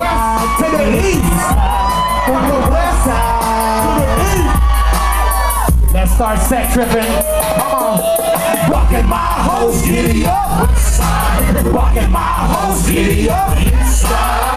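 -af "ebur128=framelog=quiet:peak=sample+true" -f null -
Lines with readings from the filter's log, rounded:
Integrated loudness:
  I:         -13.4 LUFS
  Threshold: -23.4 LUFS
Loudness range:
  LRA:         0.2 LU
  Threshold: -33.4 LUFS
  LRA low:   -13.5 LUFS
  LRA high:  -13.3 LUFS
Sample peak:
  Peak:       -4.1 dBFS
True peak:
  Peak:       -3.0 dBFS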